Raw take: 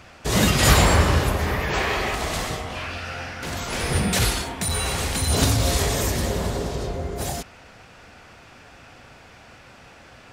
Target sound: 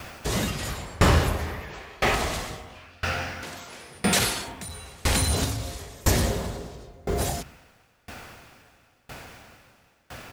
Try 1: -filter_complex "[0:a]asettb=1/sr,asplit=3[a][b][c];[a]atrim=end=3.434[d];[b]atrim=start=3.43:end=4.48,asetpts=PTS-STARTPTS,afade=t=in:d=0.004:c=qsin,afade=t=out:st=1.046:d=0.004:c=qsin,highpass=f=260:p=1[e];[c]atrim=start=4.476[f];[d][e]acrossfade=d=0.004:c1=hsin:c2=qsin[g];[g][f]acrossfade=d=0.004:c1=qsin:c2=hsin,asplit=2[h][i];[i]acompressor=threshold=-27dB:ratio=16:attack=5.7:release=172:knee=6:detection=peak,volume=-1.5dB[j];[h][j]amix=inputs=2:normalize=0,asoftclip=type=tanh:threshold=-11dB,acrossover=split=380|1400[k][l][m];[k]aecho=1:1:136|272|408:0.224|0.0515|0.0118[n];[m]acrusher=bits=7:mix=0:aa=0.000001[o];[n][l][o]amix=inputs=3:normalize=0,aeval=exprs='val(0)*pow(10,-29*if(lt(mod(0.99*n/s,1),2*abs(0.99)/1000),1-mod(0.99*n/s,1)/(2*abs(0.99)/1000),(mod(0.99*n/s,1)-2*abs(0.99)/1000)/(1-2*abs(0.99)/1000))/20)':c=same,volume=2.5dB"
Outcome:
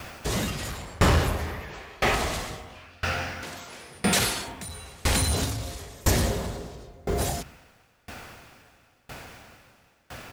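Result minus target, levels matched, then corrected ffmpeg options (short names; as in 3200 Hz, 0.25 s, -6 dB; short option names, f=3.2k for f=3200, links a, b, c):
soft clip: distortion +13 dB
-filter_complex "[0:a]asettb=1/sr,asplit=3[a][b][c];[a]atrim=end=3.434[d];[b]atrim=start=3.43:end=4.48,asetpts=PTS-STARTPTS,afade=t=in:d=0.004:c=qsin,afade=t=out:st=1.046:d=0.004:c=qsin,highpass=f=260:p=1[e];[c]atrim=start=4.476[f];[d][e]acrossfade=d=0.004:c1=hsin:c2=qsin[g];[g][f]acrossfade=d=0.004:c1=qsin:c2=hsin,asplit=2[h][i];[i]acompressor=threshold=-27dB:ratio=16:attack=5.7:release=172:knee=6:detection=peak,volume=-1.5dB[j];[h][j]amix=inputs=2:normalize=0,asoftclip=type=tanh:threshold=-2dB,acrossover=split=380|1400[k][l][m];[k]aecho=1:1:136|272|408:0.224|0.0515|0.0118[n];[m]acrusher=bits=7:mix=0:aa=0.000001[o];[n][l][o]amix=inputs=3:normalize=0,aeval=exprs='val(0)*pow(10,-29*if(lt(mod(0.99*n/s,1),2*abs(0.99)/1000),1-mod(0.99*n/s,1)/(2*abs(0.99)/1000),(mod(0.99*n/s,1)-2*abs(0.99)/1000)/(1-2*abs(0.99)/1000))/20)':c=same,volume=2.5dB"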